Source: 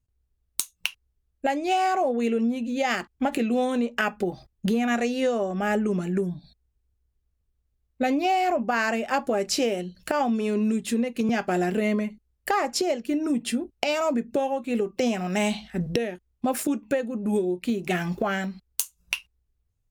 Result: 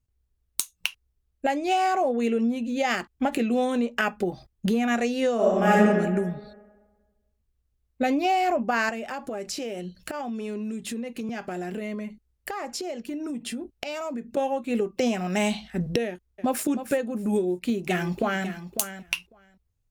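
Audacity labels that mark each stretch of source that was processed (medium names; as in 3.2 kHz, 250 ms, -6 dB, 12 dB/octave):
5.350000	5.780000	reverb throw, RT60 1.4 s, DRR -5.5 dB
8.890000	14.370000	compression 4:1, threshold -30 dBFS
16.070000	16.660000	echo throw 310 ms, feedback 25%, level -11 dB
17.410000	18.470000	echo throw 550 ms, feedback 10%, level -11 dB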